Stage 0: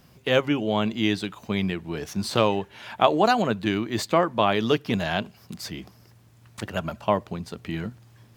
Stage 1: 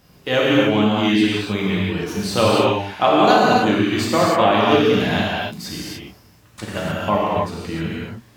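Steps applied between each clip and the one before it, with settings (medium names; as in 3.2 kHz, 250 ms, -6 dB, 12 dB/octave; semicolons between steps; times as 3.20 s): gated-style reverb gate 330 ms flat, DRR -6.5 dB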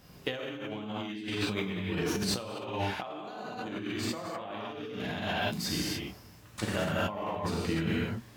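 compressor with a negative ratio -26 dBFS, ratio -1; trim -9 dB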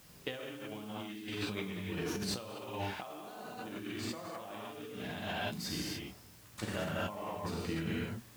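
added noise white -55 dBFS; trim -6 dB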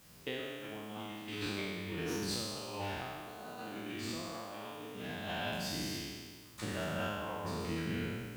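spectral sustain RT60 1.69 s; trim -3.5 dB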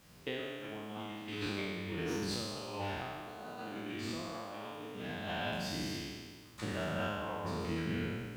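treble shelf 6.6 kHz -8.5 dB; trim +1 dB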